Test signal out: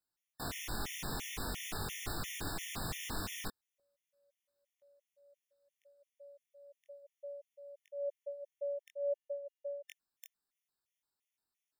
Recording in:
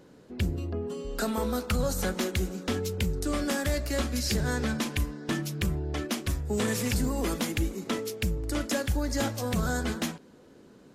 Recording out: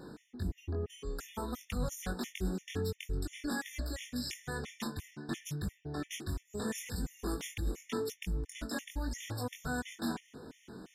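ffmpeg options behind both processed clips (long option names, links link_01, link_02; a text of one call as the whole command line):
ffmpeg -i in.wav -af "equalizer=frequency=550:width=4.9:gain=-8.5,areverse,acompressor=threshold=-40dB:ratio=10,areverse,flanger=delay=20:depth=2.5:speed=0.52,afftfilt=real='re*gt(sin(2*PI*2.9*pts/sr)*(1-2*mod(floor(b*sr/1024/1800),2)),0)':imag='im*gt(sin(2*PI*2.9*pts/sr)*(1-2*mod(floor(b*sr/1024/1800),2)),0)':win_size=1024:overlap=0.75,volume=10.5dB" out.wav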